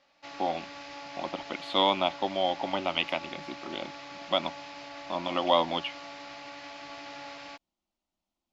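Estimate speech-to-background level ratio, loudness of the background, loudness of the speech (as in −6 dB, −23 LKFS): 13.0 dB, −43.0 LKFS, −30.0 LKFS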